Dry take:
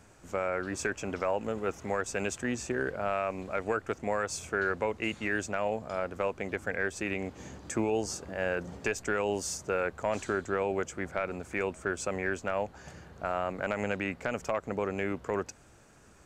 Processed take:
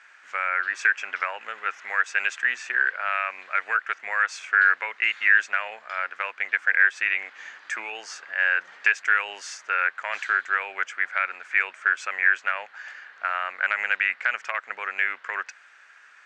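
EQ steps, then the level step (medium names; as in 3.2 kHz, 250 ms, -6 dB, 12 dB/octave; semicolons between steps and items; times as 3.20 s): resonant high-pass 1.7 kHz, resonance Q 2.7; low-pass 3.5 kHz 12 dB/octave; +8.0 dB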